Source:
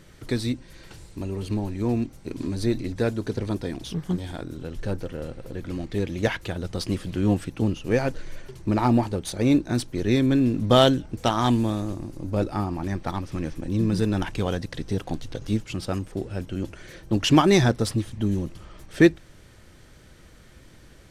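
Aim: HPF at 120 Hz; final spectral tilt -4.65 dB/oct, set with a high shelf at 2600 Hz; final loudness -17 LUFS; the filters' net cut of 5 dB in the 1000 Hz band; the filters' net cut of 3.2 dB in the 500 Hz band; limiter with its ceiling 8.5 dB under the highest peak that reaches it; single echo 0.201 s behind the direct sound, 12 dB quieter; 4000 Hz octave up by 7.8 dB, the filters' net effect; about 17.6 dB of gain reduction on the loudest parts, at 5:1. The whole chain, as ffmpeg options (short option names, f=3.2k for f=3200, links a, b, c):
-af "highpass=120,equalizer=f=500:t=o:g=-3,equalizer=f=1k:t=o:g=-7,highshelf=f=2.6k:g=5.5,equalizer=f=4k:t=o:g=6,acompressor=threshold=-32dB:ratio=5,alimiter=level_in=0.5dB:limit=-24dB:level=0:latency=1,volume=-0.5dB,aecho=1:1:201:0.251,volume=20dB"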